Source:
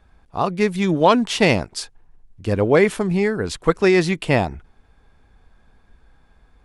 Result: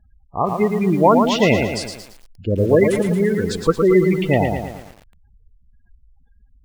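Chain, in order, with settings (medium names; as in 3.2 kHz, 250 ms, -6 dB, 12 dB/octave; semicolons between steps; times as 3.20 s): spectral gate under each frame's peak -15 dB strong; bit-crushed delay 113 ms, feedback 55%, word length 7-bit, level -5 dB; trim +1 dB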